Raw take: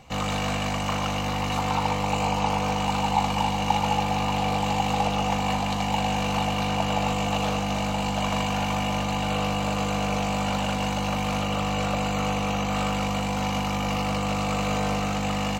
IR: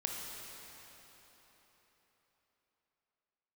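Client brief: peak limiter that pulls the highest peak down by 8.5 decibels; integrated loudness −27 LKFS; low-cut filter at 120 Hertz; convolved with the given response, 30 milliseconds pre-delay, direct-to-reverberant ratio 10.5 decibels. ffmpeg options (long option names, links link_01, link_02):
-filter_complex "[0:a]highpass=120,alimiter=limit=-17dB:level=0:latency=1,asplit=2[link_01][link_02];[1:a]atrim=start_sample=2205,adelay=30[link_03];[link_02][link_03]afir=irnorm=-1:irlink=0,volume=-13dB[link_04];[link_01][link_04]amix=inputs=2:normalize=0,volume=-0.5dB"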